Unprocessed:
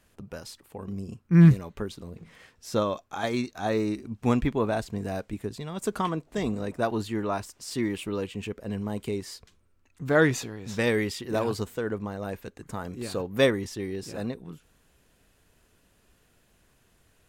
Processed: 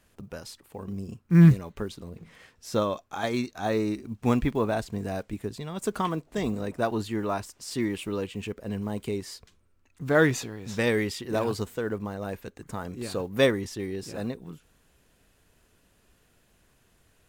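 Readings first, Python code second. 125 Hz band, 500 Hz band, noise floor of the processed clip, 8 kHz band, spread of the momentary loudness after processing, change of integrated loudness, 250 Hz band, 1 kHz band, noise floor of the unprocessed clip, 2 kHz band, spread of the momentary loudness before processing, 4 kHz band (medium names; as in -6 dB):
0.0 dB, 0.0 dB, -65 dBFS, 0.0 dB, 17 LU, 0.0 dB, 0.0 dB, 0.0 dB, -65 dBFS, 0.0 dB, 17 LU, 0.0 dB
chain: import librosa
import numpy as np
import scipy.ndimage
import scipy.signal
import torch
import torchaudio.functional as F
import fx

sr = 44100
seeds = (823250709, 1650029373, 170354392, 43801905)

y = fx.block_float(x, sr, bits=7)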